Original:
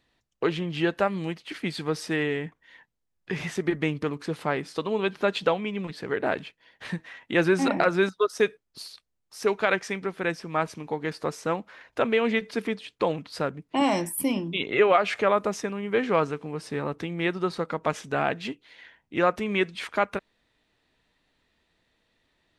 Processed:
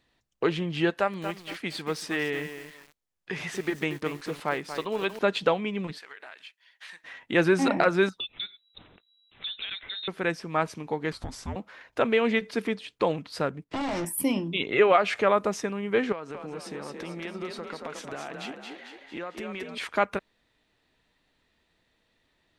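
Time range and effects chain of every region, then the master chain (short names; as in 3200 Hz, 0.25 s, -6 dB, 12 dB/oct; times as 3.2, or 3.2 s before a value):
0.9–5.19 low shelf 340 Hz -8 dB + lo-fi delay 0.234 s, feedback 35%, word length 7-bit, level -9 dB
5.98–7.04 Bessel high-pass 1800 Hz + compressor, threshold -40 dBFS
8.2–10.08 low shelf 290 Hz +10 dB + compressor 5:1, threshold -33 dBFS + inverted band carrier 3900 Hz
11.12–11.56 compressor 12:1, threshold -29 dBFS + frequency shift -410 Hz
13.64–14.05 compressor 4:1, threshold -37 dBFS + sample leveller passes 5 + air absorption 78 m
16.12–19.78 bell 93 Hz -13.5 dB 0.98 oct + compressor 5:1, threshold -34 dBFS + frequency-shifting echo 0.224 s, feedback 52%, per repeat +34 Hz, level -4.5 dB
whole clip: dry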